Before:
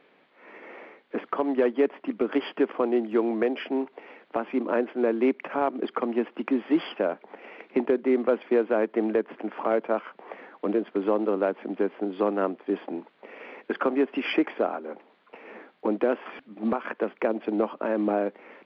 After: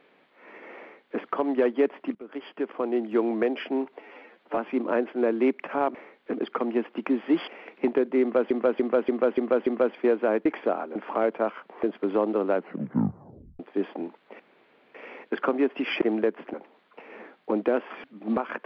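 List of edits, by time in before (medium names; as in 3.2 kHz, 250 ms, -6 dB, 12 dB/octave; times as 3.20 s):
0.79–1.18 s: copy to 5.75 s
2.15–3.19 s: fade in, from -21 dB
3.99–4.38 s: stretch 1.5×
6.89–7.40 s: delete
8.14–8.43 s: loop, 6 plays
8.93–9.45 s: swap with 14.39–14.89 s
10.33–10.76 s: delete
11.47 s: tape stop 1.05 s
13.32 s: insert room tone 0.55 s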